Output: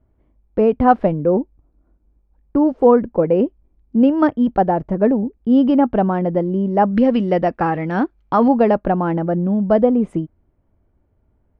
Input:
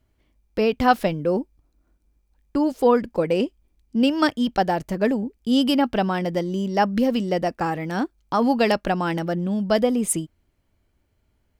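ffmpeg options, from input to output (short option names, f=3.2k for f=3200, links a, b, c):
-af "asetnsamples=n=441:p=0,asendcmd='6.91 lowpass f 2000;8.48 lowpass f 1000',lowpass=1k,volume=6dB"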